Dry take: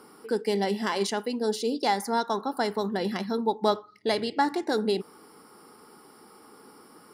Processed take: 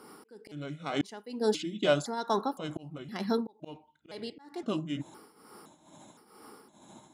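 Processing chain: pitch shift switched off and on -5.5 st, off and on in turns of 514 ms; slow attack 537 ms; tremolo triangle 2.2 Hz, depth 80%; trim +2 dB

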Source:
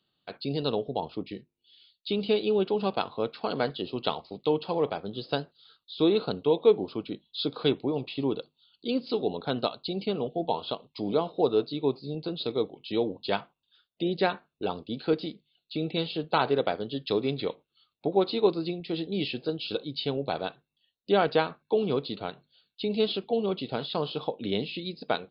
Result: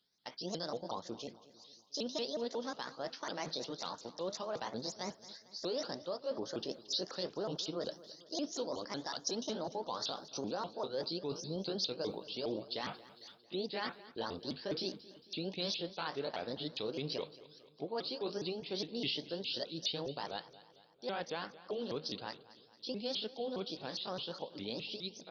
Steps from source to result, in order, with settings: sawtooth pitch modulation +5.5 st, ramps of 194 ms; Doppler pass-by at 10.40 s, 21 m/s, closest 21 m; reverse; compression 8:1, threshold -48 dBFS, peak gain reduction 26 dB; reverse; peak limiter -42.5 dBFS, peak gain reduction 9 dB; treble shelf 2.2 kHz +8.5 dB; feedback delay 225 ms, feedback 53%, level -18 dB; trim +13 dB

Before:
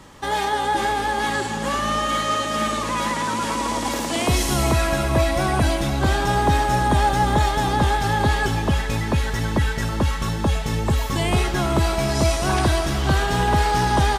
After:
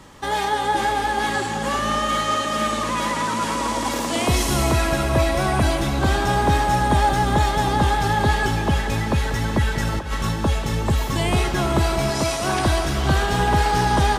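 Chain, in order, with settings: 9.72–10.32 s: compressor with a negative ratio -23 dBFS, ratio -0.5; 12.10–12.66 s: high-pass 190 Hz 6 dB/octave; tape echo 189 ms, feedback 84%, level -12 dB, low-pass 4.3 kHz

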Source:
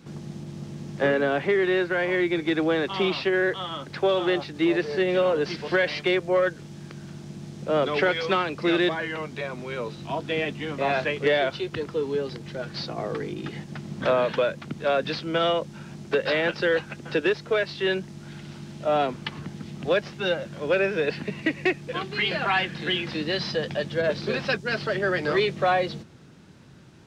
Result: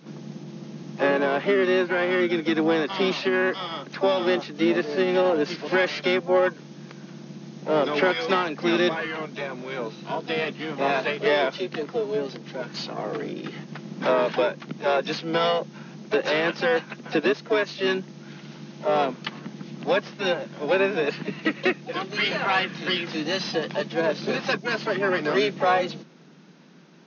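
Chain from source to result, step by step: harmony voices -7 st -9 dB, +7 st -11 dB; FFT band-pass 140–6700 Hz

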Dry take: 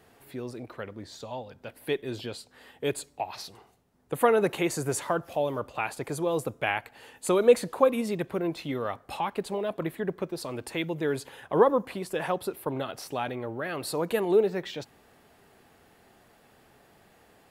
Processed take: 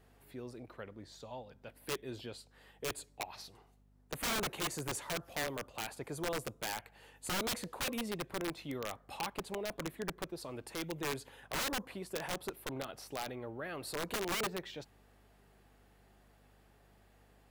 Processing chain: integer overflow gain 21 dB; hum 50 Hz, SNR 25 dB; trim -9 dB

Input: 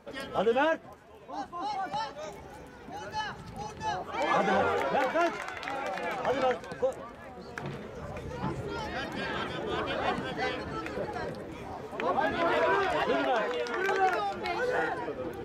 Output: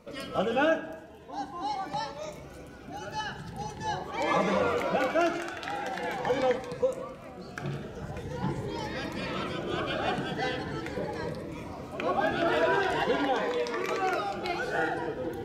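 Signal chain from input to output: reverberation RT60 0.95 s, pre-delay 6 ms, DRR 7.5 dB; Shepard-style phaser rising 0.43 Hz; trim +2 dB

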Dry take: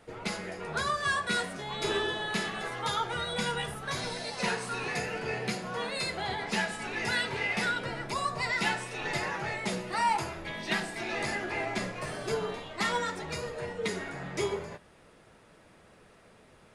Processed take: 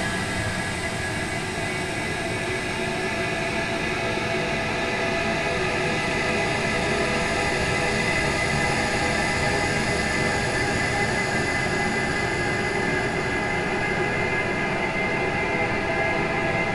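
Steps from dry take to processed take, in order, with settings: octave divider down 1 oct, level +1 dB; Paulstretch 24×, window 0.50 s, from 10.89 s; trim +9 dB

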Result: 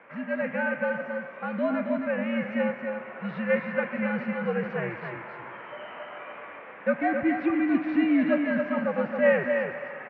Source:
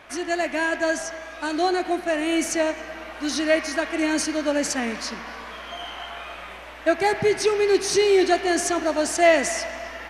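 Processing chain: mistuned SSB -99 Hz 270–2500 Hz; delay 271 ms -6 dB; trim -4.5 dB

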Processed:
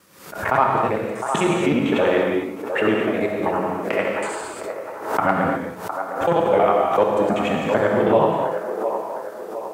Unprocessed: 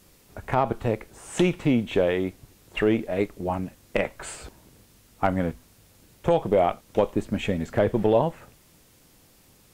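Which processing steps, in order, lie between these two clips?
time reversed locally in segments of 64 ms; high-pass 130 Hz 12 dB/octave; peaking EQ 1.3 kHz +9.5 dB 1.1 oct; hum notches 60/120/180 Hz; on a send: feedback echo behind a band-pass 709 ms, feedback 47%, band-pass 740 Hz, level -7 dB; on the sum: gated-style reverb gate 280 ms flat, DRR -0.5 dB; swell ahead of each attack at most 87 dB/s

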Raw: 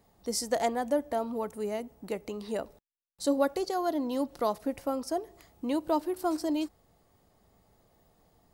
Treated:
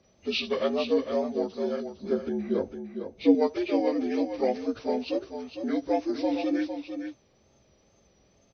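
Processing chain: frequency axis rescaled in octaves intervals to 77%; wow and flutter 60 cents; 1.95–3.35 s: tilt shelf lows +6.5 dB; delay 455 ms -8 dB; trim +3.5 dB

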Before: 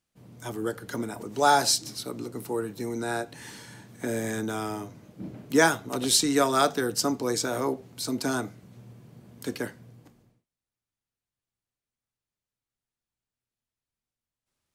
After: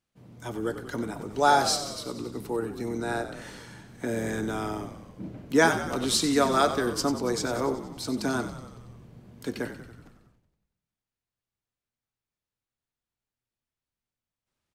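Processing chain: treble shelf 6.4 kHz -8.5 dB; on a send: frequency-shifting echo 93 ms, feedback 62%, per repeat -46 Hz, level -11 dB

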